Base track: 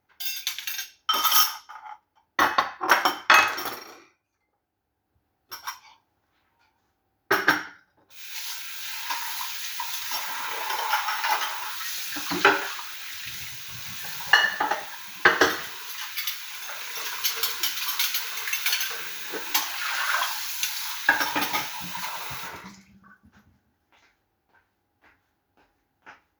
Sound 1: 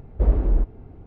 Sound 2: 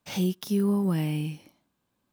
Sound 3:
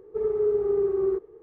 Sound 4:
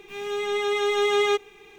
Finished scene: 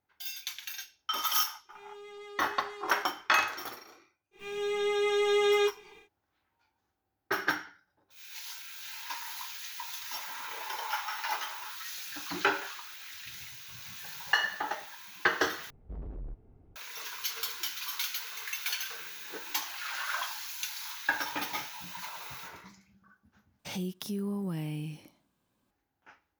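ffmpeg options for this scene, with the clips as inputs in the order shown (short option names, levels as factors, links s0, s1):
-filter_complex "[4:a]asplit=2[s0][s1];[0:a]volume=0.355[s2];[s0]asoftclip=type=tanh:threshold=0.0562[s3];[s1]asplit=2[s4][s5];[s5]adelay=24,volume=0.501[s6];[s4][s6]amix=inputs=2:normalize=0[s7];[1:a]asoftclip=type=tanh:threshold=0.0891[s8];[2:a]acompressor=threshold=0.01:ratio=2:attack=8.1:release=98:knee=1:detection=peak[s9];[s2]asplit=3[s10][s11][s12];[s10]atrim=end=15.704[s13];[s8]atrim=end=1.06,asetpts=PTS-STARTPTS,volume=0.168[s14];[s11]atrim=start=16.756:end=23.594[s15];[s9]atrim=end=2.12[s16];[s12]atrim=start=25.706[s17];[s3]atrim=end=1.78,asetpts=PTS-STARTPTS,volume=0.133,afade=t=in:d=0.05,afade=t=out:st=1.73:d=0.05,adelay=1650[s18];[s7]atrim=end=1.78,asetpts=PTS-STARTPTS,volume=0.531,afade=t=in:d=0.1,afade=t=out:st=1.68:d=0.1,adelay=4310[s19];[s13][s14]acrossfade=d=0.004:c1=hsin:c2=hsin[s20];[s20][s15]acrossfade=d=0.004:c1=hsin:c2=hsin[s21];[s21][s16]acrossfade=d=0.004:c1=hsin:c2=hsin[s22];[s22][s17]acrossfade=d=0.004:c1=hsin:c2=hsin[s23];[s23][s18][s19]amix=inputs=3:normalize=0"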